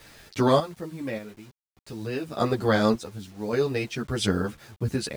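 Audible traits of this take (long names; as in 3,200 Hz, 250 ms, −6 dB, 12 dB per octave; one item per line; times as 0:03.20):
sample-and-hold tremolo 1.7 Hz, depth 90%
a quantiser's noise floor 10 bits, dither none
a shimmering, thickened sound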